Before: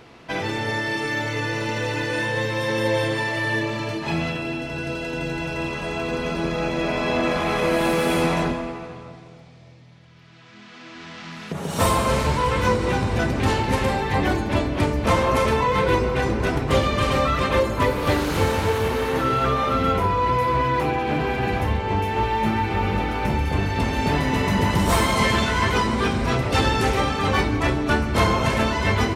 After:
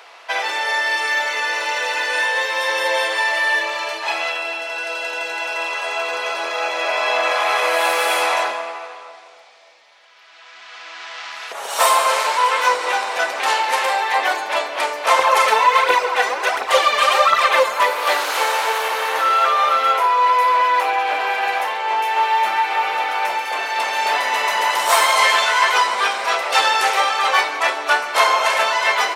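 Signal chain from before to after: HPF 640 Hz 24 dB/oct; 15.19–17.8 phaser 1.4 Hz, delay 4.8 ms, feedback 55%; gain +7.5 dB

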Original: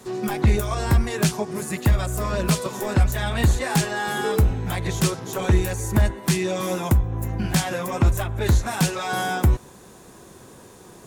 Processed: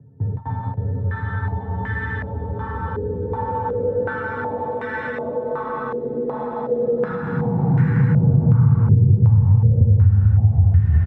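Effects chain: Doppler pass-by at 4.12, 23 m/s, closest 5.5 m; echo 0.622 s -4.5 dB; tremolo 1.2 Hz, depth 83%; upward compressor, threshold -35 dBFS; Paulstretch 33×, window 0.10 s, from 3.86; gate with hold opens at -26 dBFS; frequency shift +35 Hz; bell 88 Hz +3.5 dB 1 oct; compressor 12:1, threshold -24 dBFS, peak gain reduction 20 dB; resonant low shelf 230 Hz +11.5 dB, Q 1.5; stepped low-pass 2.7 Hz 410–1800 Hz

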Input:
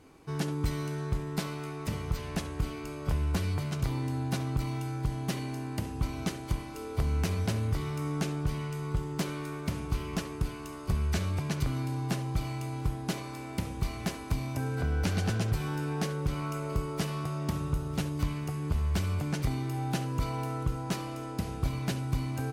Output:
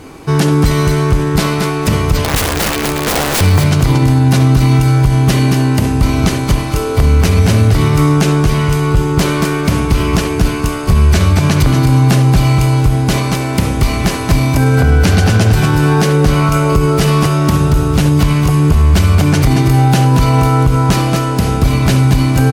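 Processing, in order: 2.24–3.41 wrapped overs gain 32 dB; feedback echo 0.229 s, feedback 16%, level -8.5 dB; maximiser +23.5 dB; gain -1 dB

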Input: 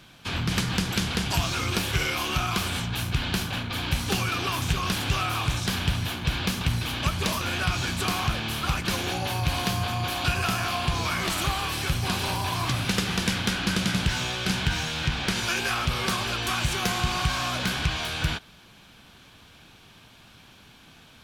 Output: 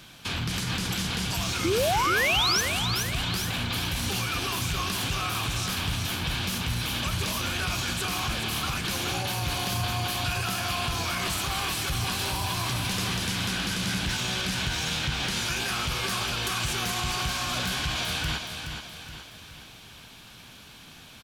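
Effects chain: high shelf 3700 Hz +6.5 dB; limiter -22 dBFS, peak gain reduction 13 dB; painted sound rise, 1.64–2.61, 310–6300 Hz -26 dBFS; on a send: feedback echo 0.422 s, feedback 46%, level -7 dB; on the sum: gain +1 dB

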